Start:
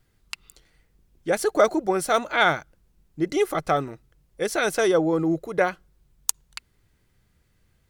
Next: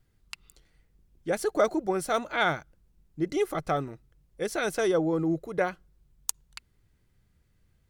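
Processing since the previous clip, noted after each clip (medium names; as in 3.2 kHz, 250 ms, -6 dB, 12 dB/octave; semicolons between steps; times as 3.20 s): bass shelf 290 Hz +5.5 dB; trim -6.5 dB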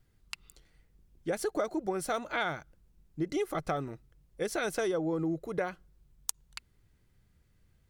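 compression 6:1, threshold -28 dBFS, peak gain reduction 10 dB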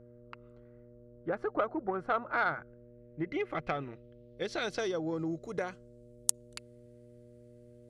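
low-pass sweep 1.3 kHz -> 9.6 kHz, 2.31–6.18 s; Chebyshev shaper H 7 -24 dB, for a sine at -6 dBFS; mains buzz 120 Hz, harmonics 5, -57 dBFS -1 dB/octave; trim +1.5 dB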